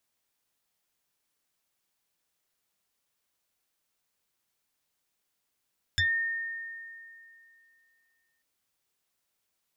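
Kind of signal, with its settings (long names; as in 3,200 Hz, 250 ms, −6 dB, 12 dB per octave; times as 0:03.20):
two-operator FM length 2.44 s, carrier 1,830 Hz, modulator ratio 0.95, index 2.8, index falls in 0.16 s exponential, decay 2.62 s, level −21.5 dB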